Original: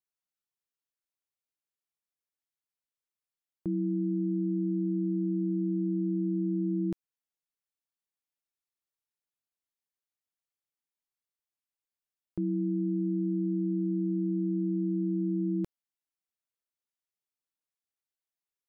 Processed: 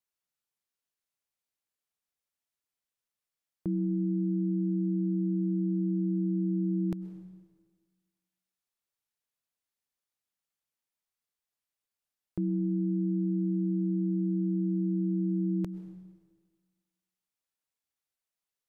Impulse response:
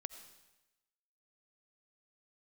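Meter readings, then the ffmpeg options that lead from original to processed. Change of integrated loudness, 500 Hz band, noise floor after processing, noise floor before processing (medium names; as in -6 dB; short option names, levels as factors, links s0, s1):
+0.5 dB, no reading, under -85 dBFS, under -85 dBFS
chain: -filter_complex "[0:a]equalizer=f=340:t=o:w=0.3:g=-4.5,asplit=2[s0][s1];[1:a]atrim=start_sample=2205,asetrate=29547,aresample=44100[s2];[s1][s2]afir=irnorm=-1:irlink=0,volume=1.78[s3];[s0][s3]amix=inputs=2:normalize=0,volume=0.531"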